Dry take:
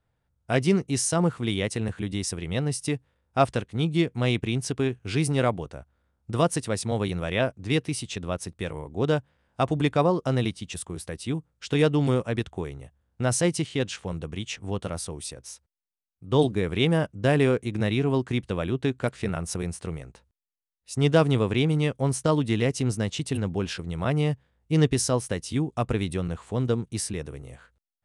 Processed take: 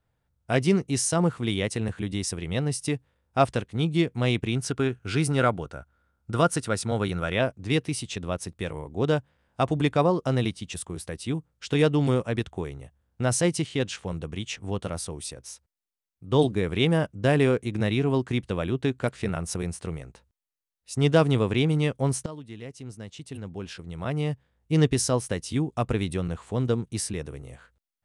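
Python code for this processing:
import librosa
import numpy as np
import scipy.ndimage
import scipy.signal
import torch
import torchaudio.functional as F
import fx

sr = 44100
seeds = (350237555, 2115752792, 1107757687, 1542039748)

y = fx.peak_eq(x, sr, hz=1400.0, db=11.5, octaves=0.21, at=(4.52, 7.34))
y = fx.edit(y, sr, fx.fade_in_from(start_s=22.26, length_s=2.48, curve='qua', floor_db=-17.0), tone=tone)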